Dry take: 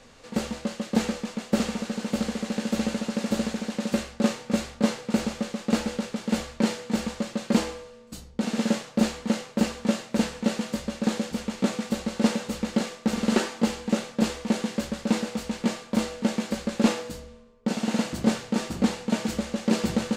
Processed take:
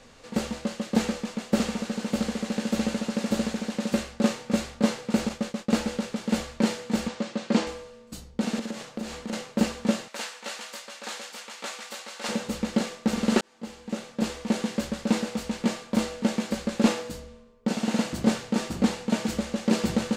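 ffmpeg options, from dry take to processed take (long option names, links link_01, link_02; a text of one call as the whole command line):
ffmpeg -i in.wav -filter_complex "[0:a]asettb=1/sr,asplit=3[link_01][link_02][link_03];[link_01]atrim=end=5.294[link_04];[link_02]atrim=start=5.29:end=5.85,asetpts=PTS-STARTPTS,afade=type=in:duration=0.004:curve=qsin,afade=type=out:start_time=0.556:duration=0.004:curve=qsin,agate=range=-33dB:threshold=-36dB:ratio=3:release=100:detection=peak[link_05];[link_03]atrim=start=5.846[link_06];[link_04][link_05]acrossfade=duration=0.004:curve1=hsin:curve2=qsin[link_07];[link_07][link_06]acrossfade=duration=0.004:curve1=qsin:curve2=hsin,asettb=1/sr,asplit=3[link_08][link_09][link_10];[link_08]atrim=end=7.084[link_11];[link_09]atrim=start=7.08:end=7.67,asetpts=PTS-STARTPTS,afade=type=in:duration=0.004:curve=qsin,afade=type=out:start_time=0.586:duration=0.004:curve=qsin,highpass=160,lowpass=6300[link_12];[link_10]atrim=start=7.666[link_13];[link_11][link_12]acrossfade=duration=0.004:curve1=hsin:curve2=qsin[link_14];[link_14][link_13]acrossfade=duration=0.004:curve1=qsin:curve2=hsin,asettb=1/sr,asplit=3[link_15][link_16][link_17];[link_15]atrim=end=8.594[link_18];[link_16]atrim=start=8.59:end=9.33,asetpts=PTS-STARTPTS,afade=type=in:duration=0.004:curve=qsin,afade=type=out:start_time=0.736:duration=0.004:curve=qsin,acompressor=threshold=-30dB:ratio=5:attack=3.2:release=140:knee=1:detection=peak[link_19];[link_17]atrim=start=9.326[link_20];[link_18][link_19]acrossfade=duration=0.004:curve1=hsin:curve2=qsin[link_21];[link_21][link_20]acrossfade=duration=0.004:curve1=qsin:curve2=hsin,asettb=1/sr,asplit=3[link_22][link_23][link_24];[link_22]atrim=end=10.084[link_25];[link_23]atrim=start=10.08:end=12.29,asetpts=PTS-STARTPTS,afade=type=in:duration=0.004:curve=qsin,afade=type=out:start_time=2.206:duration=0.004:curve=qsin,highpass=940[link_26];[link_24]atrim=start=12.286[link_27];[link_25][link_26]acrossfade=duration=0.004:curve1=hsin:curve2=qsin[link_28];[link_28][link_27]acrossfade=duration=0.004:curve1=qsin:curve2=hsin,asplit=2[link_29][link_30];[link_29]atrim=end=13.41,asetpts=PTS-STARTPTS,afade=type=out:start_time=13.406:duration=0.004:curve=hsin[link_31];[link_30]atrim=start=13.41,asetpts=PTS-STARTPTS,afade=type=in:duration=1.22[link_32];[link_31][link_32]concat=n=2:v=0:a=1" out.wav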